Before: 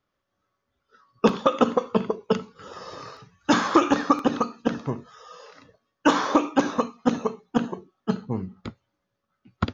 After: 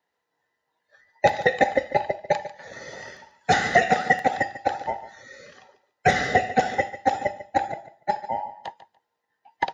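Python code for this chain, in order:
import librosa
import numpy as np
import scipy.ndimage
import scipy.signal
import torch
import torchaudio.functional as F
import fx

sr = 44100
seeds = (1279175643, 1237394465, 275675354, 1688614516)

p1 = fx.band_invert(x, sr, width_hz=1000)
p2 = scipy.signal.sosfilt(scipy.signal.butter(2, 98.0, 'highpass', fs=sr, output='sos'), p1)
y = p2 + fx.echo_feedback(p2, sr, ms=145, feedback_pct=18, wet_db=-14.5, dry=0)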